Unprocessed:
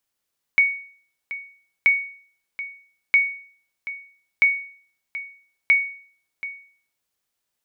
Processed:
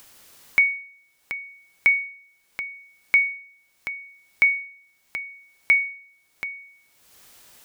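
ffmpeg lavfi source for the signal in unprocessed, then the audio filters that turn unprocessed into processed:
-f lavfi -i "aevalsrc='0.355*(sin(2*PI*2230*mod(t,1.28))*exp(-6.91*mod(t,1.28)/0.5)+0.178*sin(2*PI*2230*max(mod(t,1.28)-0.73,0))*exp(-6.91*max(mod(t,1.28)-0.73,0)/0.5))':d=6.4:s=44100"
-af "acompressor=mode=upward:threshold=-28dB:ratio=2.5"

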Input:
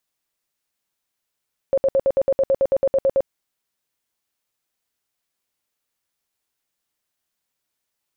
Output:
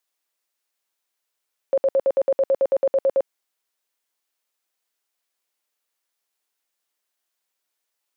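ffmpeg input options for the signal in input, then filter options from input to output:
-f lavfi -i "aevalsrc='0.211*sin(2*PI*542*mod(t,0.11))*lt(mod(t,0.11),25/542)':d=1.54:s=44100"
-af "highpass=370"

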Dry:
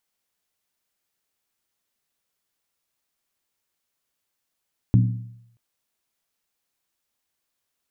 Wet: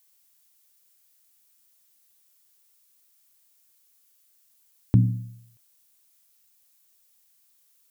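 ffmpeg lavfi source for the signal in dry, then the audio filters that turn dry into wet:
-f lavfi -i "aevalsrc='0.282*pow(10,-3*t/0.76)*sin(2*PI*117*t)+0.141*pow(10,-3*t/0.602)*sin(2*PI*186.5*t)+0.0708*pow(10,-3*t/0.52)*sin(2*PI*249.9*t)+0.0355*pow(10,-3*t/0.502)*sin(2*PI*268.6*t)+0.0178*pow(10,-3*t/0.467)*sin(2*PI*310.4*t)':d=0.63:s=44100"
-af "highpass=f=84:p=1,lowshelf=f=160:g=3,crystalizer=i=4:c=0"

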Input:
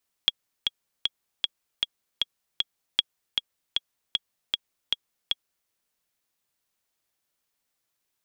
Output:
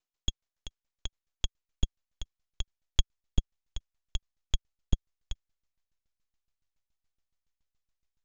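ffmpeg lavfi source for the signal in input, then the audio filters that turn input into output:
-f lavfi -i "aevalsrc='pow(10,(-6-4.5*gte(mod(t,7*60/155),60/155))/20)*sin(2*PI*3320*mod(t,60/155))*exp(-6.91*mod(t,60/155)/0.03)':d=5.41:s=44100"
-af "aresample=16000,aeval=exprs='max(val(0),0)':c=same,aresample=44100,asubboost=boost=9.5:cutoff=75,aeval=exprs='val(0)*pow(10,-19*if(lt(mod(7.1*n/s,1),2*abs(7.1)/1000),1-mod(7.1*n/s,1)/(2*abs(7.1)/1000),(mod(7.1*n/s,1)-2*abs(7.1)/1000)/(1-2*abs(7.1)/1000))/20)':c=same"

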